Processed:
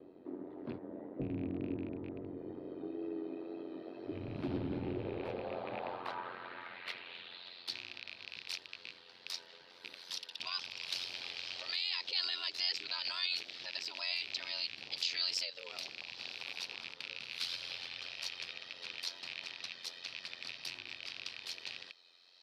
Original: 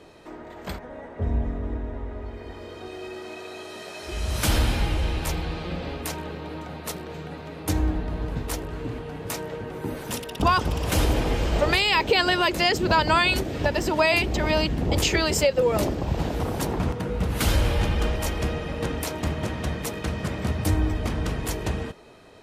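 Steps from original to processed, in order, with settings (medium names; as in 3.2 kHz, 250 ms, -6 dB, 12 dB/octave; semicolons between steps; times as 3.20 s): rattle on loud lows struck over -29 dBFS, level -19 dBFS; resonant high shelf 5.4 kHz -8.5 dB, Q 3; peak limiter -16 dBFS, peak gain reduction 9.5 dB; ring modulator 44 Hz; wow and flutter 28 cents; band-pass sweep 300 Hz -> 5.6 kHz, 4.81–7.85 s; trim +3 dB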